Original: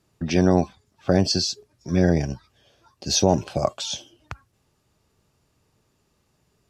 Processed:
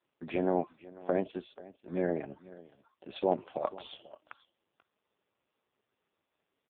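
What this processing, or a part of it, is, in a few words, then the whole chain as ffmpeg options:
satellite phone: -filter_complex "[0:a]asettb=1/sr,asplit=3[a][b][c];[a]atrim=end=2.064[d];[b]atrim=start=2.06:end=3.11,asetpts=PTS-STARTPTS,afade=t=in:d=0.004:c=qsin,afade=t=out:st=1.046:d=0.004:c=qsin,acrossover=split=2800[e][f];[f]acompressor=threshold=-50dB:ratio=4:attack=1:release=60[g];[e][g]amix=inputs=2:normalize=0[h];[c]atrim=start=3.106[i];[d][h]acrossfade=d=0.004:c1=hsin:c2=qsin[j];[j][i]acrossfade=d=0.004:c1=qsin:c2=hsin,highpass=330,lowpass=3.2k,aecho=1:1:486:0.106,volume=-6.5dB" -ar 8000 -c:a libopencore_amrnb -b:a 4750

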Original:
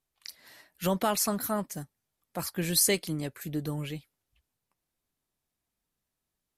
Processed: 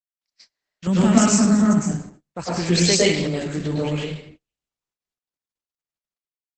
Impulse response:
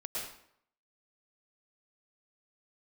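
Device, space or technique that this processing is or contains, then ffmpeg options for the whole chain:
speakerphone in a meeting room: -filter_complex "[0:a]asettb=1/sr,asplit=3[a][b][c];[a]atrim=end=0.874[d];[b]atrim=start=0.87:end=1.8,asetpts=PTS-STARTPTS,afade=t=in:d=0.004:c=qsin,afade=t=out:st=0.926:d=0.004:c=qsin,equalizer=f=125:t=o:w=1:g=10,equalizer=f=250:t=o:w=1:g=11,equalizer=f=500:t=o:w=1:g=-8,equalizer=f=1k:t=o:w=1:g=-4,equalizer=f=2k:t=o:w=1:g=7,equalizer=f=4k:t=o:w=1:g=-8,equalizer=f=8k:t=o:w=1:g=11[e];[c]atrim=start=1.796[f];[d][e]acrossfade=d=0.004:c1=hsin:c2=qsin[g];[g][f]acrossfade=d=0.004:c1=qsin:c2=hsin[h];[1:a]atrim=start_sample=2205[i];[h][i]afir=irnorm=-1:irlink=0,asplit=2[j][k];[k]adelay=150,highpass=300,lowpass=3.4k,asoftclip=type=hard:threshold=-17.5dB,volume=-19dB[l];[j][l]amix=inputs=2:normalize=0,dynaudnorm=f=570:g=3:m=14.5dB,agate=range=-33dB:threshold=-42dB:ratio=16:detection=peak" -ar 48000 -c:a libopus -b:a 12k

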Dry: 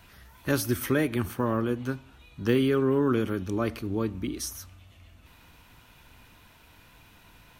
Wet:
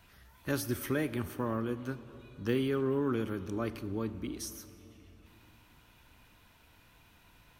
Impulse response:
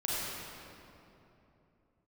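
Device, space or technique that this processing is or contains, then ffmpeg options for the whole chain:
saturated reverb return: -filter_complex "[0:a]asplit=2[a][b];[1:a]atrim=start_sample=2205[c];[b][c]afir=irnorm=-1:irlink=0,asoftclip=type=tanh:threshold=-16dB,volume=-18.5dB[d];[a][d]amix=inputs=2:normalize=0,volume=-7.5dB"

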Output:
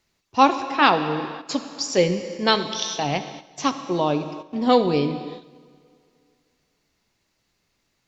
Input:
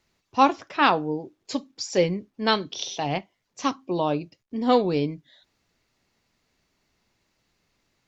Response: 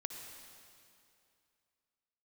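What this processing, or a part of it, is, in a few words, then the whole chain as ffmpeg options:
keyed gated reverb: -filter_complex "[0:a]highshelf=f=3.9k:g=4,asplit=3[a][b][c];[1:a]atrim=start_sample=2205[d];[b][d]afir=irnorm=-1:irlink=0[e];[c]apad=whole_len=356205[f];[e][f]sidechaingate=range=-10dB:threshold=-53dB:ratio=16:detection=peak,volume=2.5dB[g];[a][g]amix=inputs=2:normalize=0,volume=-3.5dB"

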